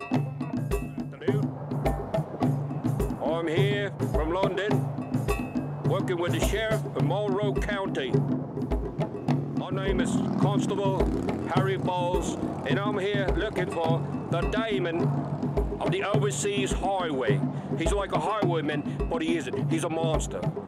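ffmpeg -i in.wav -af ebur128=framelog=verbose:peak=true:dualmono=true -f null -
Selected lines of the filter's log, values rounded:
Integrated loudness:
  I:         -24.7 LUFS
  Threshold: -34.7 LUFS
Loudness range:
  LRA:         1.3 LU
  Threshold: -44.6 LUFS
  LRA low:   -25.2 LUFS
  LRA high:  -23.9 LUFS
True peak:
  Peak:       -9.4 dBFS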